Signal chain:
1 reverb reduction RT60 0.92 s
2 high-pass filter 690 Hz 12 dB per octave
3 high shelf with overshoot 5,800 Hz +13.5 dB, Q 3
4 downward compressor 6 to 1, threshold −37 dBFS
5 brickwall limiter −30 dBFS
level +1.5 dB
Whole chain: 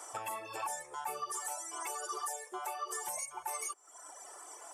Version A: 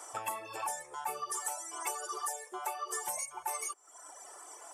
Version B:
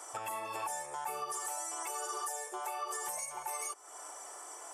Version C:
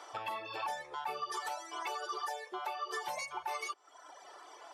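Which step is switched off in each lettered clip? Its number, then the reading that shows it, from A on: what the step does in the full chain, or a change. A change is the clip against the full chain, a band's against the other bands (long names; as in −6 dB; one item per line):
5, change in crest factor +5.5 dB
1, change in momentary loudness spread −2 LU
3, change in momentary loudness spread +4 LU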